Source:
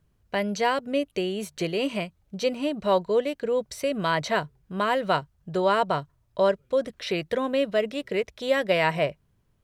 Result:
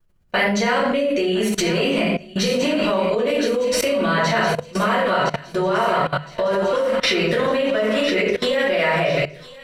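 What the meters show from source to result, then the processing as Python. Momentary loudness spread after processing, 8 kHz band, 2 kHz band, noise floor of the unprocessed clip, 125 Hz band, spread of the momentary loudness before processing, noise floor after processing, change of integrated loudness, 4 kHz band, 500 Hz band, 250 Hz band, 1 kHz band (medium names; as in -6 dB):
4 LU, +12.0 dB, +9.0 dB, -68 dBFS, +8.0 dB, 7 LU, -40 dBFS, +6.5 dB, +9.0 dB, +6.0 dB, +8.0 dB, +5.0 dB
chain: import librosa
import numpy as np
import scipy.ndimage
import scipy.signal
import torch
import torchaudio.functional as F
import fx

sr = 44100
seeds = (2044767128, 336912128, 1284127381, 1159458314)

y = fx.recorder_agc(x, sr, target_db=-12.0, rise_db_per_s=19.0, max_gain_db=30)
y = fx.echo_thinned(y, sr, ms=1013, feedback_pct=66, hz=1100.0, wet_db=-9.5)
y = fx.room_shoebox(y, sr, seeds[0], volume_m3=110.0, walls='mixed', distance_m=2.6)
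y = fx.level_steps(y, sr, step_db=20)
y = fx.hum_notches(y, sr, base_hz=50, count=3)
y = fx.dynamic_eq(y, sr, hz=1800.0, q=0.72, threshold_db=-33.0, ratio=4.0, max_db=4)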